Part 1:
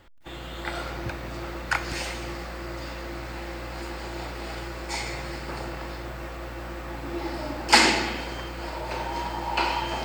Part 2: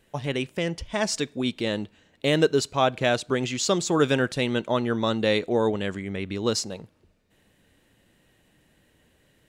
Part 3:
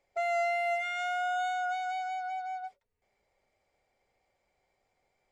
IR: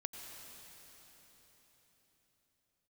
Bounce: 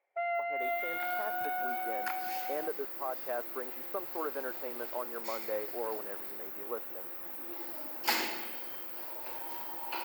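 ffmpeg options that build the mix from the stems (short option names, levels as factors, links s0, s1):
-filter_complex "[0:a]aexciter=amount=14.2:drive=8.9:freq=12000,adelay=350,volume=0.2[s0];[1:a]lowpass=f=1400:w=0.5412,lowpass=f=1400:w=1.3066,adelay=250,volume=0.376[s1];[2:a]lowpass=f=2500:w=0.5412,lowpass=f=2500:w=1.3066,volume=0.794[s2];[s1][s2]amix=inputs=2:normalize=0,highpass=500,alimiter=level_in=1.19:limit=0.0631:level=0:latency=1:release=236,volume=0.841,volume=1[s3];[s0][s3]amix=inputs=2:normalize=0,highpass=280"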